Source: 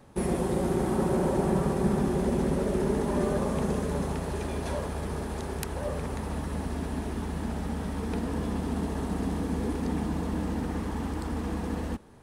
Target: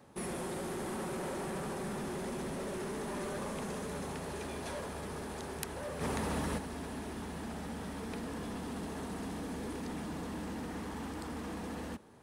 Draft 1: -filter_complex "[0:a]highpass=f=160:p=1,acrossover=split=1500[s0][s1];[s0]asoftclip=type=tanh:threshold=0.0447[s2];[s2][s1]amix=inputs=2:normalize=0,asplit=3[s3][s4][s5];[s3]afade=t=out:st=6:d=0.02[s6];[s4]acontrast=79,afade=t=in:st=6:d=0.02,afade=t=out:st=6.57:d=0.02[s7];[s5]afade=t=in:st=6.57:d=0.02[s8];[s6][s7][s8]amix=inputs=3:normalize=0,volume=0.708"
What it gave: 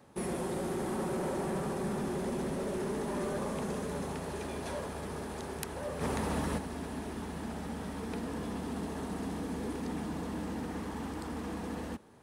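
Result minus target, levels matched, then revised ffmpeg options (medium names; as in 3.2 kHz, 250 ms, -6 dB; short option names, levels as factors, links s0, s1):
saturation: distortion -5 dB
-filter_complex "[0:a]highpass=f=160:p=1,acrossover=split=1500[s0][s1];[s0]asoftclip=type=tanh:threshold=0.02[s2];[s2][s1]amix=inputs=2:normalize=0,asplit=3[s3][s4][s5];[s3]afade=t=out:st=6:d=0.02[s6];[s4]acontrast=79,afade=t=in:st=6:d=0.02,afade=t=out:st=6.57:d=0.02[s7];[s5]afade=t=in:st=6.57:d=0.02[s8];[s6][s7][s8]amix=inputs=3:normalize=0,volume=0.708"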